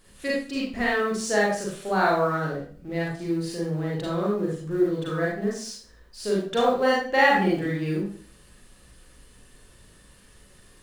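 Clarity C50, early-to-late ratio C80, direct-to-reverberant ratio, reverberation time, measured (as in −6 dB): 1.0 dB, 6.5 dB, −5.0 dB, 0.45 s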